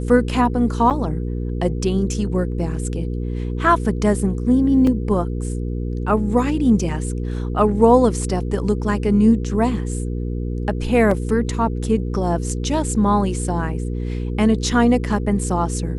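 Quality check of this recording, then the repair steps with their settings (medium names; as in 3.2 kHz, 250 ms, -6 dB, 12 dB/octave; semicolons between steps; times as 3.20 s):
hum 60 Hz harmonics 8 -24 dBFS
0.90–0.91 s: dropout 7.6 ms
4.87 s: dropout 2.7 ms
11.11 s: dropout 3.5 ms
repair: de-hum 60 Hz, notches 8; interpolate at 0.90 s, 7.6 ms; interpolate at 4.87 s, 2.7 ms; interpolate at 11.11 s, 3.5 ms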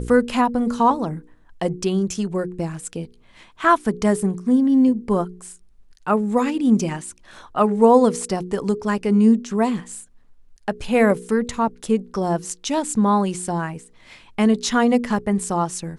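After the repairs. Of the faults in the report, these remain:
nothing left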